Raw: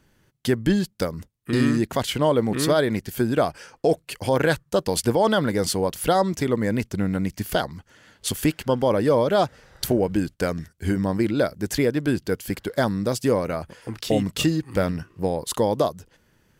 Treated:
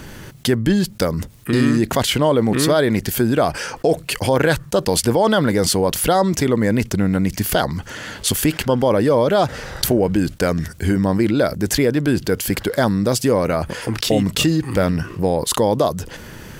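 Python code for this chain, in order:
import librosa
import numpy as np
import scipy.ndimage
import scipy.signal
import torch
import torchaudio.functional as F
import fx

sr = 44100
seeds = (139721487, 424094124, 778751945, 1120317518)

y = fx.env_flatten(x, sr, amount_pct=50)
y = y * librosa.db_to_amplitude(2.5)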